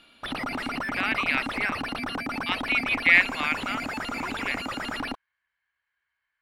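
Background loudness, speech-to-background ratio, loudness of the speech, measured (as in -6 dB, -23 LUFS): -31.5 LUFS, 6.5 dB, -25.0 LUFS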